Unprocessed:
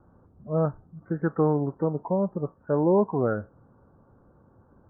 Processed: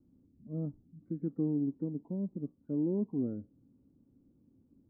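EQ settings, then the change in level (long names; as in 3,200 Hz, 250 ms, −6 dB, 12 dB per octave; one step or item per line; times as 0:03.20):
dynamic equaliser 1,600 Hz, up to −8 dB, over −48 dBFS, Q 1.7
formant resonators in series i
0.0 dB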